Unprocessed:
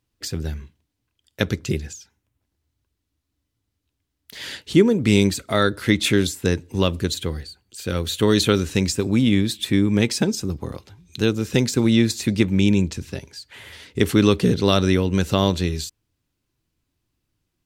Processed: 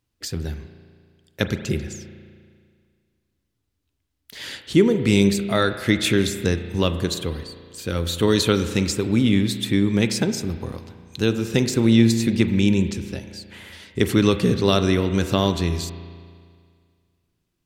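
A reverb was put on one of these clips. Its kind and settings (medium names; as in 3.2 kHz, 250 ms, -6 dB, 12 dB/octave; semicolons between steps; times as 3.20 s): spring tank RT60 2 s, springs 35 ms, chirp 45 ms, DRR 9 dB; trim -1 dB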